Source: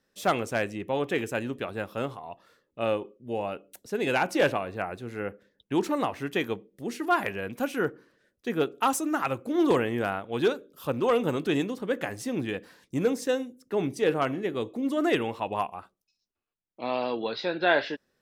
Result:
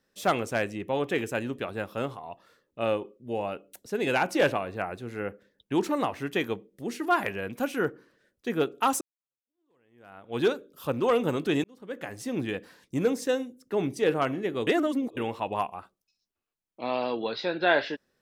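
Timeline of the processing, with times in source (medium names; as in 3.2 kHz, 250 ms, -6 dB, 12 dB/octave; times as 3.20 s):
9.01–10.37 s: fade in exponential
11.64–12.39 s: fade in
14.67–15.17 s: reverse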